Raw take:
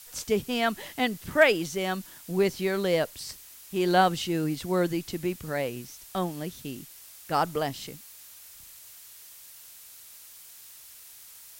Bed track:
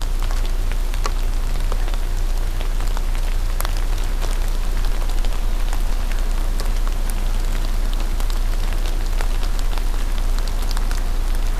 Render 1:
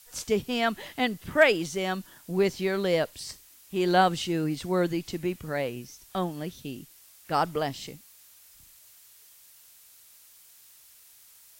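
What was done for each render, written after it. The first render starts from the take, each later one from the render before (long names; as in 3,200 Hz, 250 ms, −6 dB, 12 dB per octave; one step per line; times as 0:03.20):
noise reduction from a noise print 6 dB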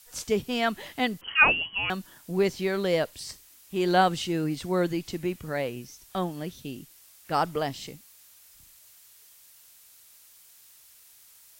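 0:01.21–0:01.90: voice inversion scrambler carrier 3,100 Hz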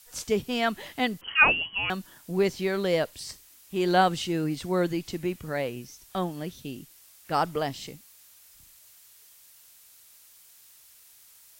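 no processing that can be heard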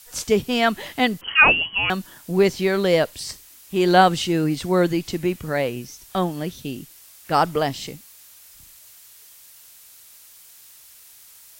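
level +7 dB
brickwall limiter −2 dBFS, peak gain reduction 3 dB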